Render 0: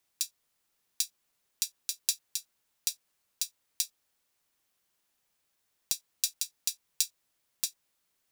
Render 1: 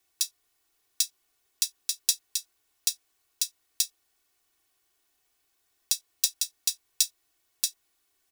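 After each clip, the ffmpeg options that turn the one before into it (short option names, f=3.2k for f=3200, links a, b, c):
-af "aecho=1:1:2.7:0.99,volume=1dB"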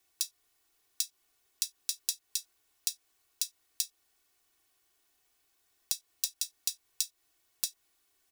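-af "acompressor=threshold=-28dB:ratio=6"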